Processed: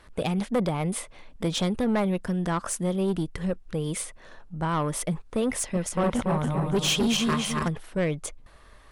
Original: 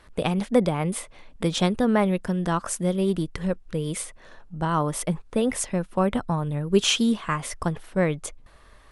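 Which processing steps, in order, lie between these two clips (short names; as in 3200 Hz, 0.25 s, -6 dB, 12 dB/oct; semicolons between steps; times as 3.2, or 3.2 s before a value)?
5.61–7.68 regenerating reverse delay 0.142 s, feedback 64%, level -3 dB; soft clip -19 dBFS, distortion -11 dB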